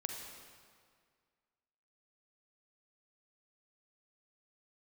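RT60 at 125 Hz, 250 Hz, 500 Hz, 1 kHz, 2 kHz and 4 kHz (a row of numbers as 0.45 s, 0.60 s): 2.0 s, 2.0 s, 2.0 s, 2.0 s, 1.8 s, 1.6 s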